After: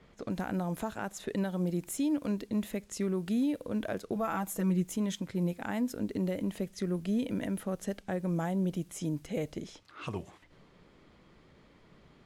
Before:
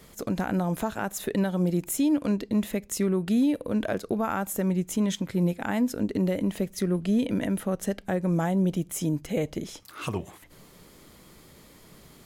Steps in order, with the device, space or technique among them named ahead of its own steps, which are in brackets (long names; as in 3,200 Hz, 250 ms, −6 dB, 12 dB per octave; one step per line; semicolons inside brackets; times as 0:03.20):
0:04.15–0:04.88: comb filter 6.1 ms, depth 78%
cassette deck with a dynamic noise filter (white noise bed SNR 34 dB; low-pass that shuts in the quiet parts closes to 2,600 Hz, open at −24 dBFS)
level −6.5 dB